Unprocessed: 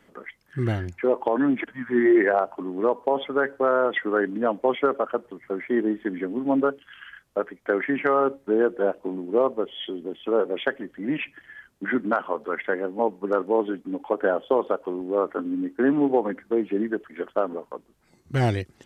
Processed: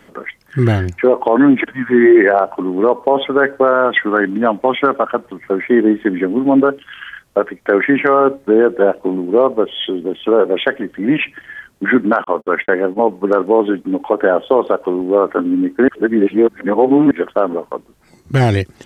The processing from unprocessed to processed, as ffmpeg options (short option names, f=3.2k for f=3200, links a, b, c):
-filter_complex "[0:a]asettb=1/sr,asplit=3[a][b][c];[a]atrim=end=3.734[d];[b]atrim=start=3.73:end=5.39,asetpts=PTS-STARTPTS,afade=t=in:d=0.004:c=qsin,afade=t=out:st=1.656:d=0.004:c=qsin,equalizer=f=440:t=o:w=0.77:g=-6.5[e];[c]atrim=start=5.386[f];[d][e]acrossfade=d=0.004:c1=hsin:c2=qsin[g];[g][f]acrossfade=d=0.004:c1=qsin:c2=hsin,asettb=1/sr,asplit=3[h][i][j];[h]atrim=end=12.244[k];[i]atrim=start=12.24:end=13.14,asetpts=PTS-STARTPTS,afade=t=in:d=0.004:c=qsin,afade=t=out:st=0.896:d=0.004:c=qsin,agate=range=-50dB:threshold=-38dB:ratio=16:release=100:detection=peak[l];[j]atrim=start=13.136[m];[k][l]acrossfade=d=0.004:c1=hsin:c2=qsin[n];[n][m]acrossfade=d=0.004:c1=qsin:c2=hsin,asplit=3[o][p][q];[o]atrim=end=15.882[r];[p]atrim=start=15.878:end=17.112,asetpts=PTS-STARTPTS,areverse[s];[q]atrim=start=17.108[t];[r][s]acrossfade=d=0.004:c1=hsin:c2=hsin[u];[u][t]acrossfade=d=0.004:c1=hsin:c2=hsin,alimiter=level_in=13dB:limit=-1dB:release=50:level=0:latency=1,volume=-1dB"